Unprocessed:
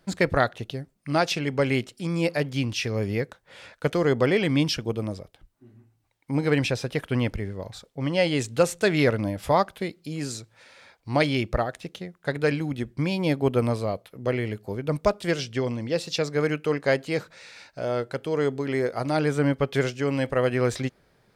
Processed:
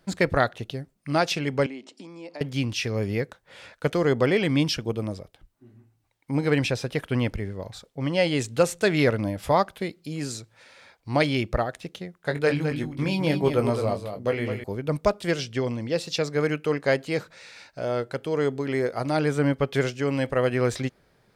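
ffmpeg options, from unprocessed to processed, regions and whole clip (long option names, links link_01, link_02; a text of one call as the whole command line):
ffmpeg -i in.wav -filter_complex "[0:a]asettb=1/sr,asplit=3[link_01][link_02][link_03];[link_01]atrim=end=1.664[link_04];[link_02]atrim=start=1.66:end=2.41,asetpts=PTS-STARTPTS,afade=type=in:duration=0.004:curve=qsin,afade=type=out:start_time=0.746:duration=0.004:curve=qsin,acompressor=threshold=-39dB:ratio=5:attack=3.2:release=140:knee=1:detection=peak,highpass=frequency=210:width=0.5412,highpass=frequency=210:width=1.3066,equalizer=frequency=280:width_type=q:width=4:gain=8,equalizer=frequency=650:width_type=q:width=4:gain=4,equalizer=frequency=920:width_type=q:width=4:gain=8,equalizer=frequency=1500:width_type=q:width=4:gain=-4,lowpass=frequency=7800:width=0.5412,lowpass=frequency=7800:width=1.3066[link_05];[link_03]atrim=start=2.406[link_06];[link_04][link_05]acrossfade=duration=0.004:curve1=hsin:curve2=qsin[link_07];[link_07][link_06]acrossfade=duration=0.004:curve1=qsin:curve2=hsin,asettb=1/sr,asplit=3[link_08][link_09][link_10];[link_08]atrim=end=12.204[link_11];[link_09]atrim=start=12.2:end=14.64,asetpts=PTS-STARTPTS,afade=type=in:duration=0.004:curve=qsin,afade=type=out:start_time=2.436:duration=0.004:curve=qsin,bandreject=frequency=50:width_type=h:width=6,bandreject=frequency=100:width_type=h:width=6,bandreject=frequency=150:width_type=h:width=6,bandreject=frequency=200:width_type=h:width=6,bandreject=frequency=250:width_type=h:width=6,bandreject=frequency=300:width_type=h:width=6,bandreject=frequency=350:width_type=h:width=6,asplit=2[link_12][link_13];[link_13]adelay=20,volume=-7dB[link_14];[link_12][link_14]amix=inputs=2:normalize=0,atrim=end_sample=107604,aecho=1:1:211:0.398,atrim=end_sample=107604[link_15];[link_10]atrim=start=14.636[link_16];[link_11][link_15]acrossfade=duration=0.004:curve1=hsin:curve2=qsin[link_17];[link_17][link_16]acrossfade=duration=0.004:curve1=qsin:curve2=hsin" out.wav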